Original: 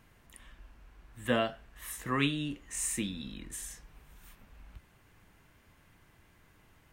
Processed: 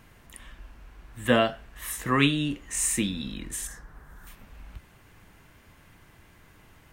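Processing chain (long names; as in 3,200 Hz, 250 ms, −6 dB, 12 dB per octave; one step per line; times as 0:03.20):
0:03.67–0:04.27: high shelf with overshoot 2,000 Hz −6.5 dB, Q 3
level +7.5 dB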